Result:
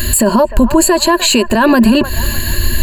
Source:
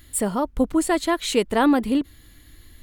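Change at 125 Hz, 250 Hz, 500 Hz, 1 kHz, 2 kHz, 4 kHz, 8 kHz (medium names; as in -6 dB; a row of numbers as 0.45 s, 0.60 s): no reading, +10.5 dB, +10.5 dB, +10.0 dB, +13.0 dB, +15.5 dB, +15.5 dB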